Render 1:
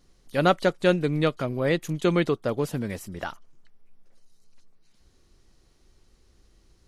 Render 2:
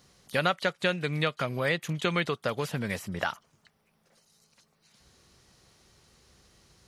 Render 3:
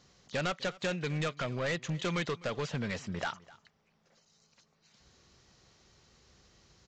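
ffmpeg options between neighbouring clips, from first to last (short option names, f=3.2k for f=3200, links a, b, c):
-filter_complex "[0:a]highpass=110,equalizer=f=310:t=o:w=0.93:g=-9,acrossover=split=1400|3800[a][b][c];[a]acompressor=threshold=-36dB:ratio=4[d];[b]acompressor=threshold=-35dB:ratio=4[e];[c]acompressor=threshold=-53dB:ratio=4[f];[d][e][f]amix=inputs=3:normalize=0,volume=7dB"
-af "aresample=16000,asoftclip=type=hard:threshold=-26.5dB,aresample=44100,aecho=1:1:254:0.0841,volume=-2dB"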